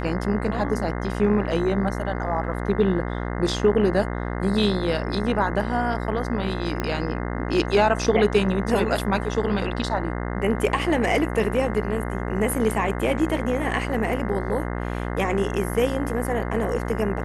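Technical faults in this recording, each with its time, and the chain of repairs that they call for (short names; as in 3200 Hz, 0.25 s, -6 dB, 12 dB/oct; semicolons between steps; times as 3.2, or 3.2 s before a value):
buzz 60 Hz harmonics 35 -28 dBFS
6.8 pop -12 dBFS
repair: de-click; de-hum 60 Hz, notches 35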